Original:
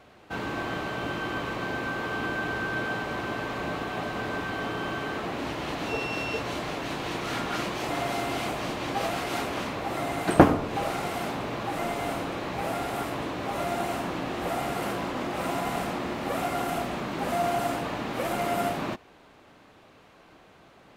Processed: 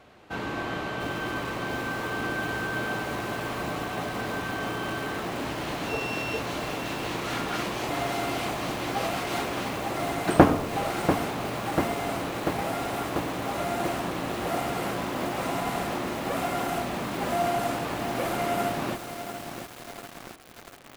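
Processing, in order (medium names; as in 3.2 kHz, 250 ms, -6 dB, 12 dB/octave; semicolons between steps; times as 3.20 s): bit-crushed delay 691 ms, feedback 80%, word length 6-bit, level -8 dB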